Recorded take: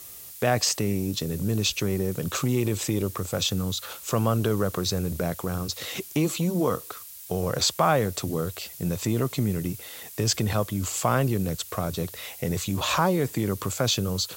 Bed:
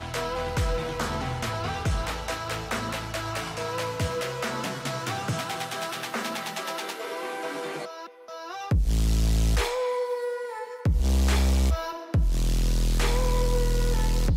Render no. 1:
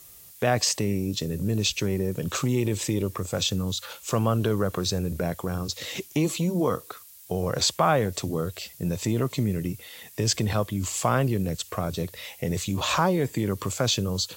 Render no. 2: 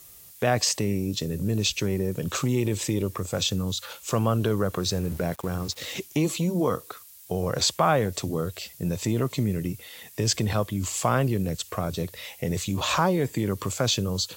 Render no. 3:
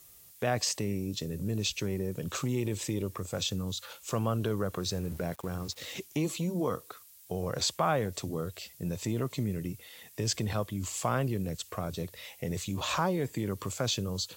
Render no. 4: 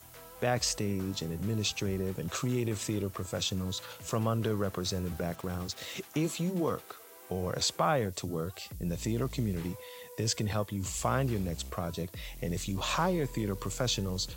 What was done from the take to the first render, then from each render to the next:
noise print and reduce 6 dB
4.86–5.94 sample gate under -40.5 dBFS
gain -6.5 dB
add bed -22 dB

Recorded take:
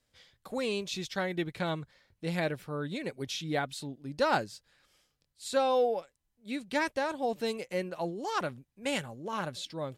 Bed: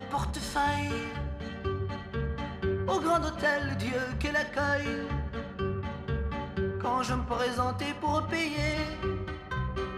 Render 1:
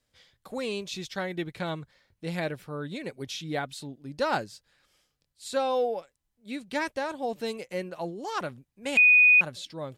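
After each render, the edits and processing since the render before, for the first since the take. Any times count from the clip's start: 8.97–9.41 bleep 2480 Hz -14 dBFS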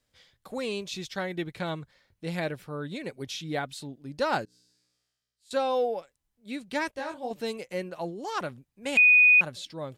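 4.45–5.51 resonator 61 Hz, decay 1.5 s, mix 100%; 6.91–7.31 detuned doubles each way 41 cents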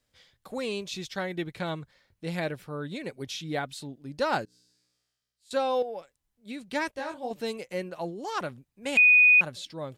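5.82–6.62 compressor, threshold -32 dBFS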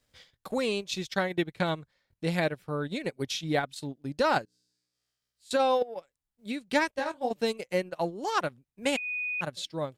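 negative-ratio compressor -26 dBFS, ratio -1; transient shaper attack +3 dB, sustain -12 dB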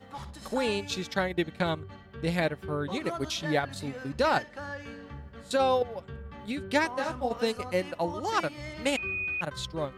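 add bed -10.5 dB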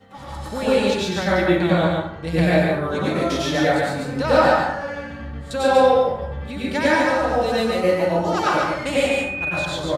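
echo 0.143 s -3.5 dB; plate-style reverb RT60 0.78 s, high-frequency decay 0.5×, pre-delay 85 ms, DRR -7.5 dB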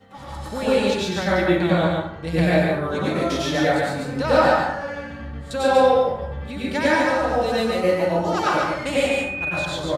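gain -1 dB

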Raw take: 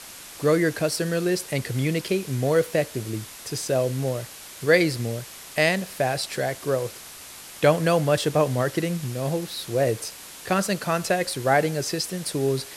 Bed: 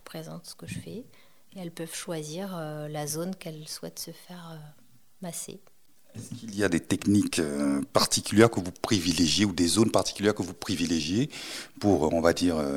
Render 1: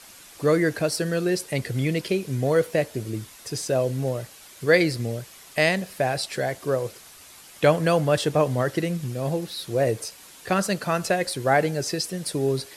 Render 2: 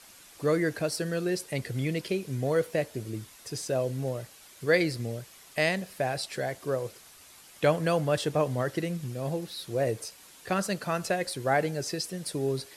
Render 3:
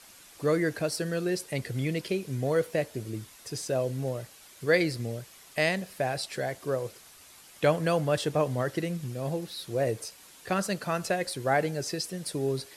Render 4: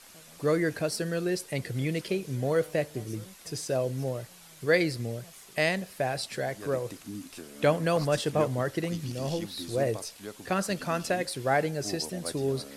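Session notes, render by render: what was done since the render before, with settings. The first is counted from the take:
denoiser 7 dB, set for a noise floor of -42 dBFS
gain -5.5 dB
nothing audible
add bed -17.5 dB

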